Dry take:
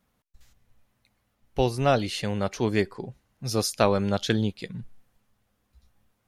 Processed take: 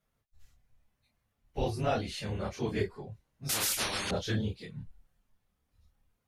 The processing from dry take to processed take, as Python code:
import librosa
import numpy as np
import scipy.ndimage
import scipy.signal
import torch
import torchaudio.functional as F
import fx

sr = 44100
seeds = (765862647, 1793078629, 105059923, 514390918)

y = fx.phase_scramble(x, sr, seeds[0], window_ms=50)
y = fx.chorus_voices(y, sr, voices=6, hz=0.56, base_ms=28, depth_ms=1.5, mix_pct=40)
y = fx.spectral_comp(y, sr, ratio=10.0, at=(3.49, 4.11))
y = y * 10.0 ** (-5.0 / 20.0)